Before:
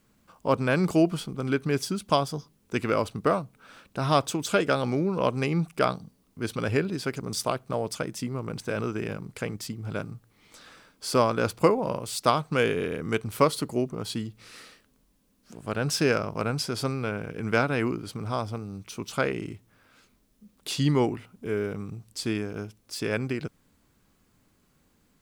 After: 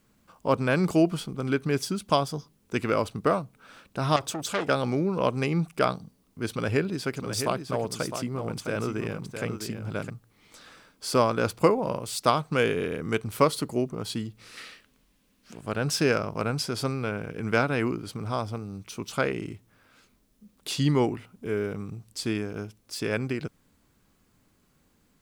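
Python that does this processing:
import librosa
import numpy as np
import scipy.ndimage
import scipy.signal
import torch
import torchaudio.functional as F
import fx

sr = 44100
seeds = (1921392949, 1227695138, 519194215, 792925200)

y = fx.transformer_sat(x, sr, knee_hz=2700.0, at=(4.16, 4.69))
y = fx.echo_single(y, sr, ms=659, db=-8.0, at=(6.51, 10.1))
y = fx.peak_eq(y, sr, hz=2500.0, db=8.0, octaves=1.8, at=(14.57, 15.61))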